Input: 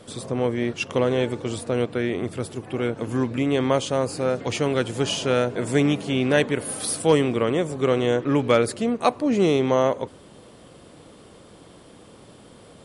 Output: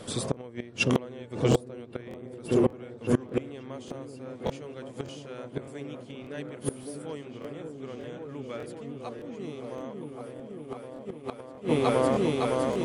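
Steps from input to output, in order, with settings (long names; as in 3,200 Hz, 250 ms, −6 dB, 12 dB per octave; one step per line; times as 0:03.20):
echo whose low-pass opens from repeat to repeat 560 ms, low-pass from 400 Hz, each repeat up 1 octave, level 0 dB
gate with flip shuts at −14 dBFS, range −24 dB
regular buffer underruns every 0.59 s, samples 1,024, repeat, from 0:00.32
level +3 dB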